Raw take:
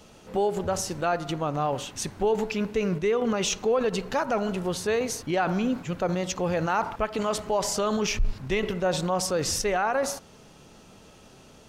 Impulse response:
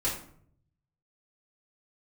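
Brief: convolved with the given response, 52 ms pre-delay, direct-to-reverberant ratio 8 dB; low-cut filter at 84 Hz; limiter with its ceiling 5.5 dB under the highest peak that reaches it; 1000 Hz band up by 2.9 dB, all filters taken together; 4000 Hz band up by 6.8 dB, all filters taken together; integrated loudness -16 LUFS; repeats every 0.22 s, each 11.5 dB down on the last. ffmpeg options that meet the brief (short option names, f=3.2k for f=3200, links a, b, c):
-filter_complex "[0:a]highpass=84,equalizer=f=1k:t=o:g=3.5,equalizer=f=4k:t=o:g=9,alimiter=limit=-16dB:level=0:latency=1,aecho=1:1:220|440|660:0.266|0.0718|0.0194,asplit=2[a][b];[1:a]atrim=start_sample=2205,adelay=52[c];[b][c]afir=irnorm=-1:irlink=0,volume=-15dB[d];[a][d]amix=inputs=2:normalize=0,volume=9.5dB"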